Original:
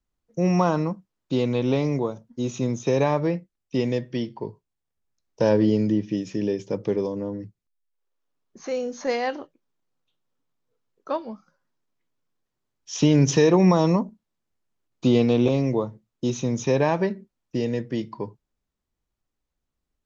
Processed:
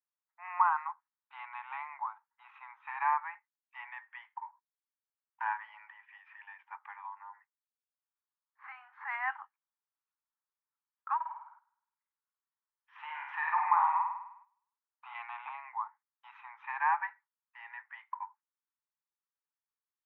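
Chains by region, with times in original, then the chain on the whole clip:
11.15–15.15 s: treble shelf 2.6 kHz -6 dB + flutter echo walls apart 8.8 m, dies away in 0.81 s
whole clip: steep high-pass 830 Hz 96 dB/octave; gate -59 dBFS, range -10 dB; steep low-pass 2 kHz 36 dB/octave; trim +1 dB

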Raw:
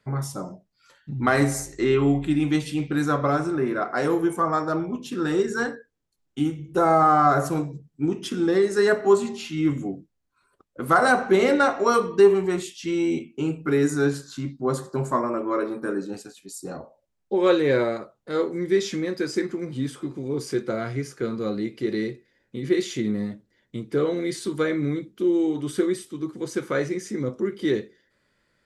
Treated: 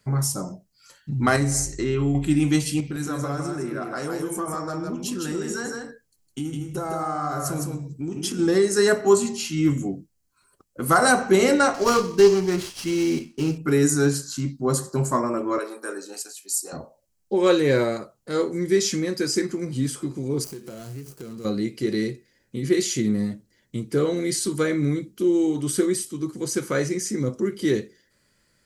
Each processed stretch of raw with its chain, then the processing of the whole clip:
1.36–2.15 s: low-pass 7.9 kHz + bass shelf 150 Hz +8 dB + compression 2:1, threshold -27 dBFS
2.80–8.39 s: compression 3:1, threshold -30 dBFS + delay 159 ms -4 dB
11.74–13.58 s: CVSD coder 32 kbps + sliding maximum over 3 samples
15.58–16.73 s: Bessel high-pass 550 Hz, order 4 + treble shelf 9.7 kHz +4 dB
20.44–21.45 s: median filter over 25 samples + treble shelf 6.4 kHz +11.5 dB + compression 5:1, threshold -37 dBFS
whole clip: tone controls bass +5 dB, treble +13 dB; band-stop 3.6 kHz, Q 10

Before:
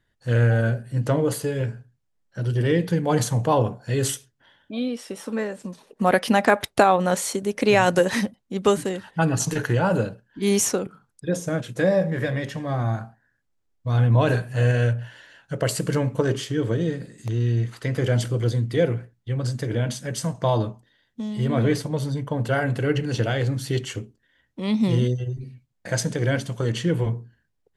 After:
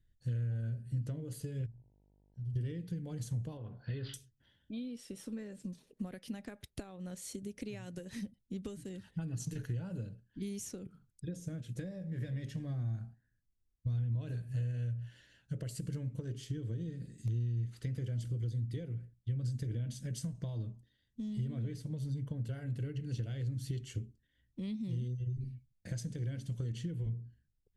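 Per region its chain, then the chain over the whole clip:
1.65–2.55 s: amplifier tone stack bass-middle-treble 10-0-1 + mains buzz 50 Hz, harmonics 19, -63 dBFS 0 dB/octave
3.57–4.14 s: rippled Chebyshev low-pass 4.9 kHz, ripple 3 dB + peaking EQ 1.2 kHz +10.5 dB 2.5 oct + compression 1.5:1, threshold -31 dBFS
whole clip: compression 12:1, threshold -29 dBFS; amplifier tone stack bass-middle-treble 10-0-1; trim +10 dB

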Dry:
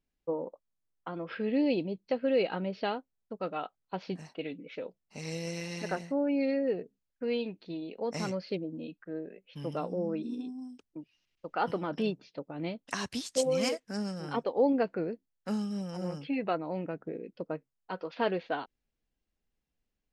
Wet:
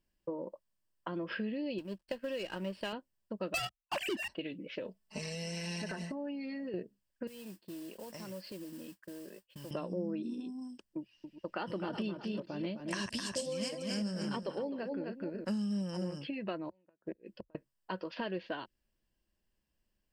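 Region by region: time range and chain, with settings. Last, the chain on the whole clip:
1.78–2.93 s: companding laws mixed up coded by A + bass shelf 490 Hz -6.5 dB + sliding maximum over 3 samples
3.54–4.28 s: formants replaced by sine waves + peaking EQ 2.6 kHz +11 dB + waveshaping leveller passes 5
4.84–6.74 s: comb 4.6 ms, depth 89% + compression, threshold -35 dBFS
7.27–9.71 s: expander -48 dBFS + compression 5:1, threshold -47 dBFS + modulation noise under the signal 12 dB
10.98–15.59 s: chunks repeated in reverse 203 ms, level -11.5 dB + delay 258 ms -6.5 dB
16.68–17.55 s: peaking EQ 170 Hz -5.5 dB 2.2 oct + inverted gate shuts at -31 dBFS, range -38 dB
whole clip: dynamic bell 800 Hz, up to -6 dB, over -44 dBFS, Q 0.78; compression 6:1, threshold -37 dBFS; rippled EQ curve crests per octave 1.3, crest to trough 7 dB; trim +2.5 dB

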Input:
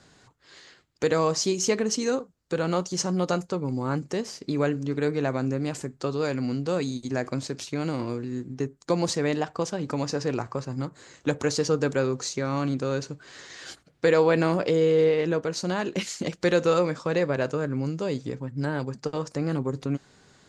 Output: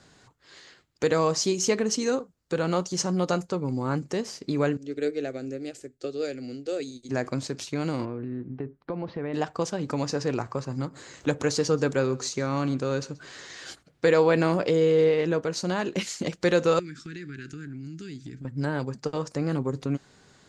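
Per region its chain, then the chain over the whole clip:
4.77–7.09 s: static phaser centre 410 Hz, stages 4 + upward expansion, over -41 dBFS
8.05–9.34 s: compression 4:1, threshold -28 dBFS + Gaussian low-pass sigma 3.3 samples
10.42–13.61 s: upward compressor, threshold -38 dBFS + delay 130 ms -21.5 dB
16.79–18.45 s: elliptic band-stop 350–1500 Hz, stop band 50 dB + compression 4:1, threshold -36 dBFS
whole clip: none

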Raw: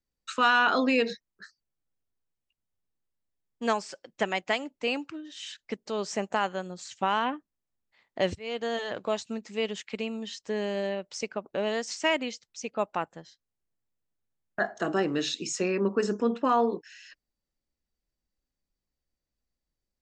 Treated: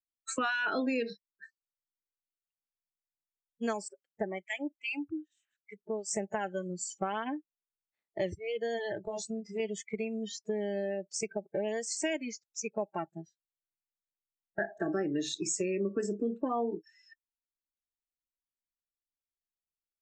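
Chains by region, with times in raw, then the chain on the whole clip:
3.88–6.11 s: peaking EQ 4.3 kHz -8.5 dB 0.54 oct + harmonic tremolo 2.5 Hz, depth 100%, crossover 1.6 kHz
9.05–9.60 s: doubling 27 ms -3 dB + compression, threshold -33 dBFS
whole clip: graphic EQ with 31 bands 315 Hz +4 dB, 1 kHz -9 dB, 2 kHz -4 dB, 3.15 kHz -6 dB, 5 kHz -8 dB, 8 kHz +10 dB; spectral noise reduction 27 dB; compression 3:1, threshold -36 dBFS; trim +4 dB

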